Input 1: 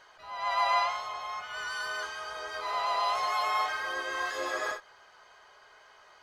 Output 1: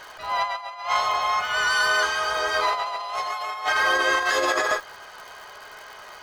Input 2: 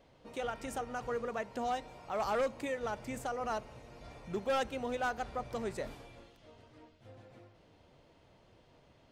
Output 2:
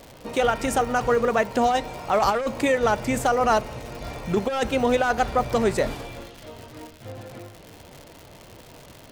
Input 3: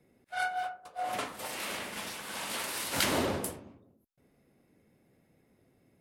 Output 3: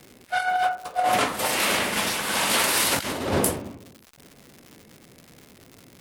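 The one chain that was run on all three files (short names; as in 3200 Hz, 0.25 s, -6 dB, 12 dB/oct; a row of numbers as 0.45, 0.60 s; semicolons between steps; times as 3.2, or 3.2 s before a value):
crackle 200/s -49 dBFS; negative-ratio compressor -34 dBFS, ratio -0.5; match loudness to -23 LUFS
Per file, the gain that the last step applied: +11.0, +15.5, +12.5 dB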